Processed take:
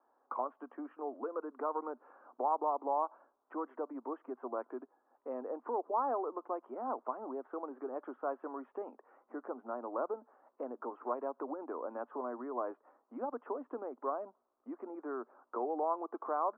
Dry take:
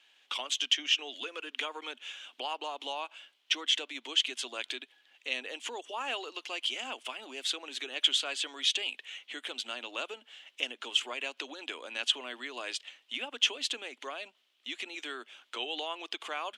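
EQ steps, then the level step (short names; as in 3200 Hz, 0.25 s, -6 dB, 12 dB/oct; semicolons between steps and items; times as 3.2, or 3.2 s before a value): steep low-pass 1200 Hz 48 dB/oct; +6.0 dB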